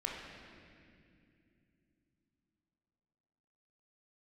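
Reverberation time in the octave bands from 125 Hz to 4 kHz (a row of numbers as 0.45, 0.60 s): 4.2, 4.2, 3.1, 2.0, 2.5, 2.0 s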